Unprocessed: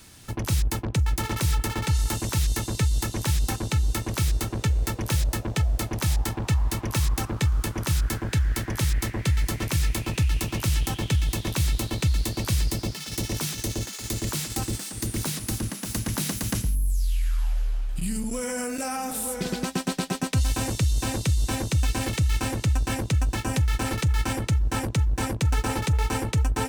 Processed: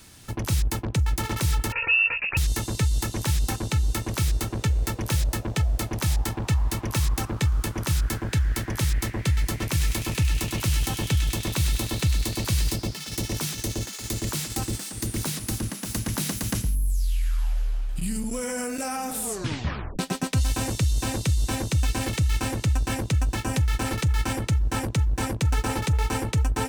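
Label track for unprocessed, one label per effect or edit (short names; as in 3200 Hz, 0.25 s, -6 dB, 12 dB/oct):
1.720000	2.370000	inverted band carrier 2700 Hz
9.660000	12.760000	thin delay 0.101 s, feedback 74%, high-pass 1800 Hz, level -6 dB
19.210000	19.210000	tape stop 0.78 s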